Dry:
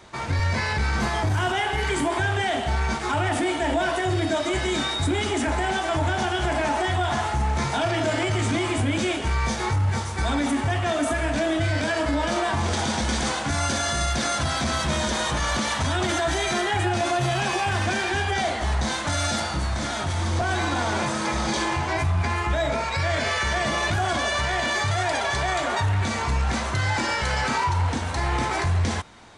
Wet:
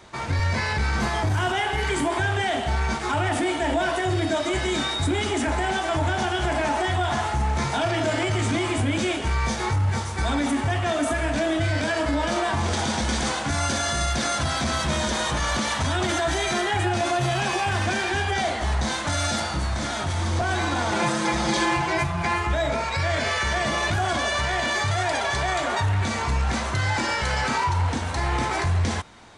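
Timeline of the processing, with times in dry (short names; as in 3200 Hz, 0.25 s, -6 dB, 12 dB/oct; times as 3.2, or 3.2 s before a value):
20.91–22.38 comb 5.8 ms, depth 66%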